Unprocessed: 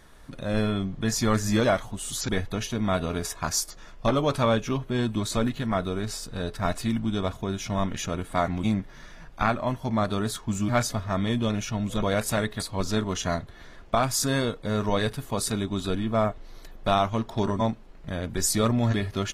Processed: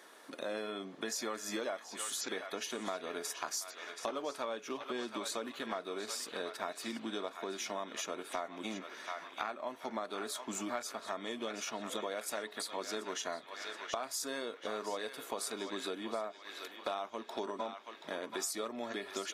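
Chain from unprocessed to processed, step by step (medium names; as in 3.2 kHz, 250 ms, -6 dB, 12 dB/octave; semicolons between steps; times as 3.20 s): high-pass 310 Hz 24 dB/octave; band-passed feedback delay 729 ms, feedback 57%, band-pass 2.4 kHz, level -9 dB; compression 6:1, threshold -36 dBFS, peak gain reduction 17 dB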